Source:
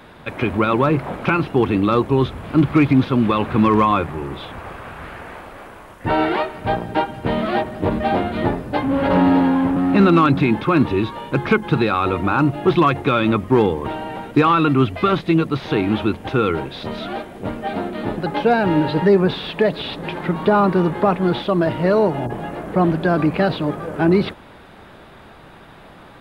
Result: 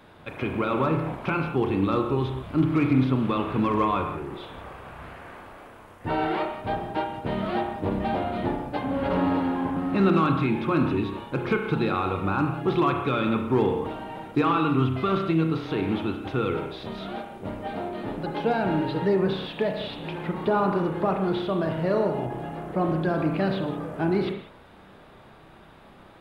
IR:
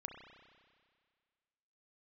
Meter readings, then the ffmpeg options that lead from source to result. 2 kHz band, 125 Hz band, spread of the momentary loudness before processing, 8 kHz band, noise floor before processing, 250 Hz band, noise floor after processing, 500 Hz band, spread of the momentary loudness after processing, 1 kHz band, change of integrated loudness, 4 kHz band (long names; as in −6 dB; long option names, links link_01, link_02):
−8.5 dB, −6.5 dB, 13 LU, can't be measured, −43 dBFS, −7.5 dB, −50 dBFS, −7.5 dB, 12 LU, −7.5 dB, −7.5 dB, −8.0 dB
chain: -filter_complex "[0:a]equalizer=frequency=1800:width_type=o:width=0.77:gain=-2[link_01];[1:a]atrim=start_sample=2205,afade=type=out:start_time=0.25:duration=0.01,atrim=end_sample=11466[link_02];[link_01][link_02]afir=irnorm=-1:irlink=0,volume=-3.5dB"